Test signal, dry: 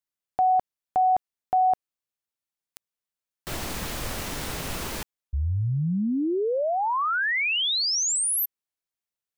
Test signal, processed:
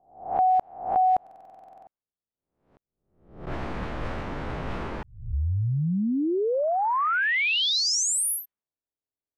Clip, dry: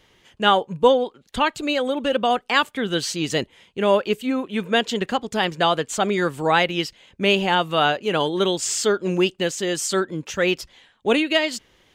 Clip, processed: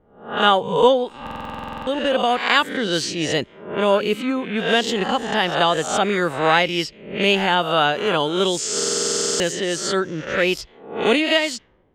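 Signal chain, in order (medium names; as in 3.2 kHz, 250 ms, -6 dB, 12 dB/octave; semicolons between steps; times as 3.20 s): reverse spectral sustain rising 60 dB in 0.59 s; level-controlled noise filter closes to 520 Hz, open at -16.5 dBFS; buffer glitch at 1.22/8.75 s, samples 2048, times 13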